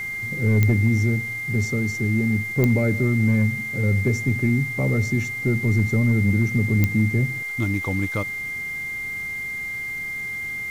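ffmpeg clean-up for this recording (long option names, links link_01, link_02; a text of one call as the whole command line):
ffmpeg -i in.wav -af "adeclick=threshold=4,bandreject=frequency=409.5:width_type=h:width=4,bandreject=frequency=819:width_type=h:width=4,bandreject=frequency=1228.5:width_type=h:width=4,bandreject=frequency=1638:width_type=h:width=4,bandreject=frequency=2100:width=30,afwtdn=0.0045" out.wav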